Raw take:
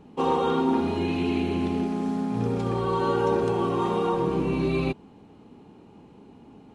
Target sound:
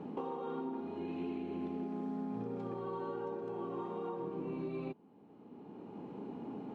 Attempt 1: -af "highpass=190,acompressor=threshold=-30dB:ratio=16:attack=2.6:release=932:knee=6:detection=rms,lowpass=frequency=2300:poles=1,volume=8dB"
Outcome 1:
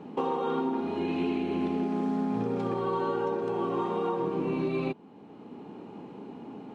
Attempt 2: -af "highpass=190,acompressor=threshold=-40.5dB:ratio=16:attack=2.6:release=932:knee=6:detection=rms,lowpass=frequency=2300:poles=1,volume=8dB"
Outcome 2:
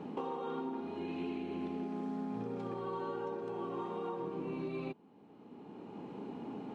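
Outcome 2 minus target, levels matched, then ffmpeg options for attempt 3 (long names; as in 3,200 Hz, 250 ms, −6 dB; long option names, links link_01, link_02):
2,000 Hz band +4.0 dB
-af "highpass=190,acompressor=threshold=-40.5dB:ratio=16:attack=2.6:release=932:knee=6:detection=rms,lowpass=frequency=1000:poles=1,volume=8dB"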